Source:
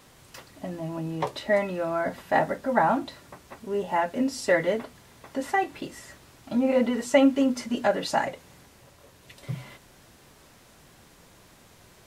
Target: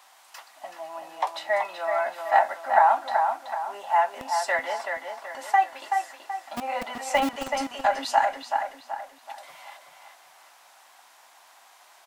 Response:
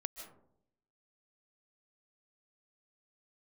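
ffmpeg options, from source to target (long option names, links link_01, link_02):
-filter_complex "[0:a]lowshelf=frequency=590:width_type=q:width=3:gain=-8.5,acrossover=split=370|2500[link_01][link_02][link_03];[link_01]acrusher=bits=4:mix=0:aa=0.000001[link_04];[link_04][link_02][link_03]amix=inputs=3:normalize=0,asplit=2[link_05][link_06];[link_06]adelay=379,lowpass=frequency=3400:poles=1,volume=-5dB,asplit=2[link_07][link_08];[link_08]adelay=379,lowpass=frequency=3400:poles=1,volume=0.43,asplit=2[link_09][link_10];[link_10]adelay=379,lowpass=frequency=3400:poles=1,volume=0.43,asplit=2[link_11][link_12];[link_12]adelay=379,lowpass=frequency=3400:poles=1,volume=0.43,asplit=2[link_13][link_14];[link_14]adelay=379,lowpass=frequency=3400:poles=1,volume=0.43[link_15];[link_05][link_07][link_09][link_11][link_13][link_15]amix=inputs=6:normalize=0"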